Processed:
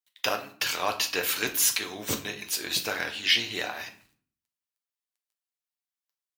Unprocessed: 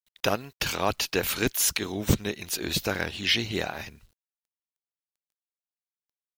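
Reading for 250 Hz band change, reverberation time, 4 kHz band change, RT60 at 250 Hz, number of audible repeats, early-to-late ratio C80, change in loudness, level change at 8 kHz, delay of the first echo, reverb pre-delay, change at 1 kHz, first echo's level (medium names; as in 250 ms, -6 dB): -8.5 dB, 0.50 s, +1.5 dB, 0.75 s, no echo, 16.5 dB, 0.0 dB, +1.5 dB, no echo, 7 ms, -0.5 dB, no echo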